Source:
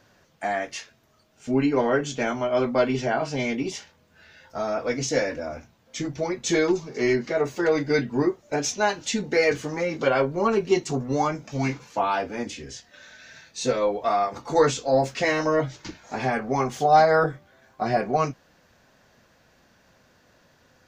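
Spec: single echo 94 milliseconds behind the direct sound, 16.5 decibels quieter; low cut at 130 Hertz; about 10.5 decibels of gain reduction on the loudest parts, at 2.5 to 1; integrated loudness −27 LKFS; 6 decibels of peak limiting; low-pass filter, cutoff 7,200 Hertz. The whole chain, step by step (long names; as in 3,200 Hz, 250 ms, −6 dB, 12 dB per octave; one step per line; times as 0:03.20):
high-pass filter 130 Hz
low-pass filter 7,200 Hz
downward compressor 2.5 to 1, threshold −29 dBFS
brickwall limiter −22.5 dBFS
single-tap delay 94 ms −16.5 dB
level +6 dB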